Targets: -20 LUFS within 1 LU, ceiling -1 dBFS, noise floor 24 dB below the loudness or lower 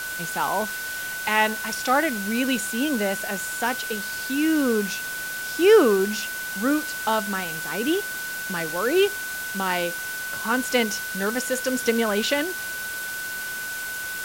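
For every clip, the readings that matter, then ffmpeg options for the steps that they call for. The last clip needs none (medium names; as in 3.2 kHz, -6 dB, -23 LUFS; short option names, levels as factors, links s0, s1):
steady tone 1.5 kHz; tone level -30 dBFS; noise floor -31 dBFS; noise floor target -48 dBFS; loudness -24.0 LUFS; peak level -4.5 dBFS; loudness target -20.0 LUFS
-> -af "bandreject=f=1500:w=30"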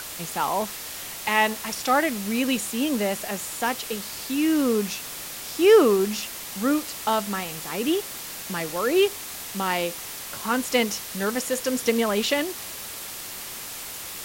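steady tone not found; noise floor -36 dBFS; noise floor target -49 dBFS
-> -af "afftdn=nr=13:nf=-36"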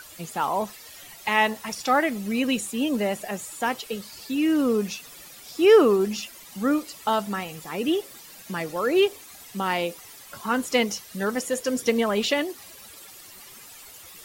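noise floor -46 dBFS; noise floor target -49 dBFS
-> -af "afftdn=nr=6:nf=-46"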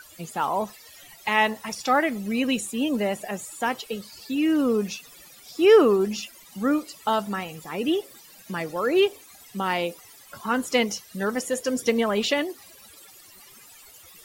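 noise floor -50 dBFS; loudness -25.0 LUFS; peak level -5.0 dBFS; loudness target -20.0 LUFS
-> -af "volume=1.78,alimiter=limit=0.891:level=0:latency=1"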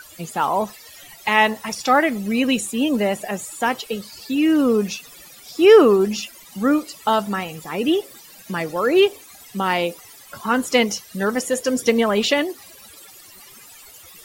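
loudness -20.0 LUFS; peak level -1.0 dBFS; noise floor -45 dBFS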